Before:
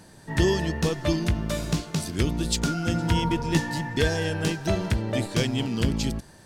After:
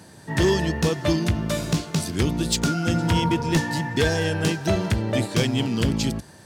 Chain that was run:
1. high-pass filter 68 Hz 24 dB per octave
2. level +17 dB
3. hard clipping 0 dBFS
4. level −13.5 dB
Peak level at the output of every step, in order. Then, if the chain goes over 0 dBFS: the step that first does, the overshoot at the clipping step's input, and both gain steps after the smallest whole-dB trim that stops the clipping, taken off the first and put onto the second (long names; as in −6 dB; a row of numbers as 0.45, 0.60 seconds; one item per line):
−8.5, +8.5, 0.0, −13.5 dBFS
step 2, 8.5 dB
step 2 +8 dB, step 4 −4.5 dB